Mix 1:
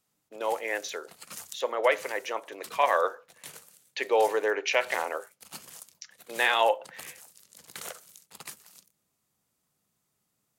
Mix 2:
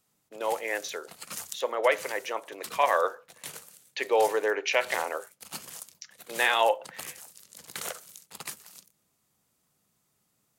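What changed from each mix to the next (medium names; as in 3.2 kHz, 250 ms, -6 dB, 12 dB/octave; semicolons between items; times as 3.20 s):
background +4.0 dB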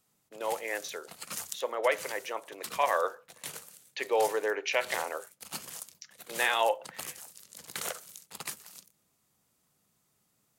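speech -3.5 dB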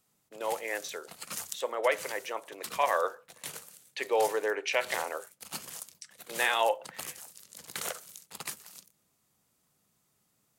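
speech: remove brick-wall FIR low-pass 7.3 kHz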